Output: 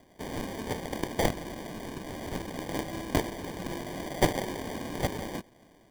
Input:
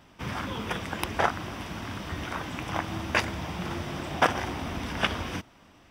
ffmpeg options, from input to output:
-af "highpass=240,lowpass=3400,acrusher=samples=33:mix=1:aa=0.000001"

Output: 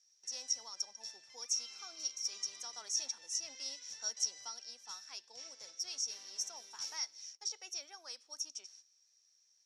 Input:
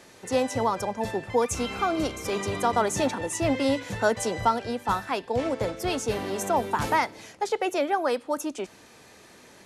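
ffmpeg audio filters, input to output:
-af "agate=range=0.224:threshold=0.00398:ratio=16:detection=peak,bandpass=f=5600:t=q:w=20:csg=0,volume=3.76"

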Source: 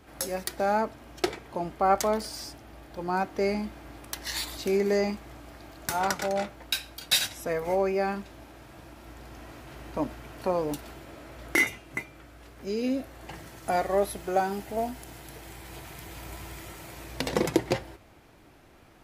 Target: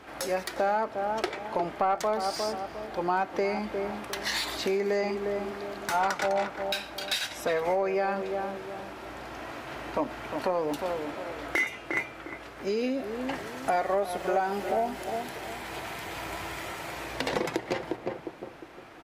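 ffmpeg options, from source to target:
-filter_complex "[0:a]asplit=2[s0][s1];[s1]adelay=355,lowpass=f=940:p=1,volume=0.316,asplit=2[s2][s3];[s3]adelay=355,lowpass=f=940:p=1,volume=0.39,asplit=2[s4][s5];[s5]adelay=355,lowpass=f=940:p=1,volume=0.39,asplit=2[s6][s7];[s7]adelay=355,lowpass=f=940:p=1,volume=0.39[s8];[s0][s2][s4][s6][s8]amix=inputs=5:normalize=0,acompressor=threshold=0.0316:ratio=6,asplit=2[s9][s10];[s10]highpass=f=720:p=1,volume=7.08,asoftclip=type=tanh:threshold=0.251[s11];[s9][s11]amix=inputs=2:normalize=0,lowpass=f=2300:p=1,volume=0.501"

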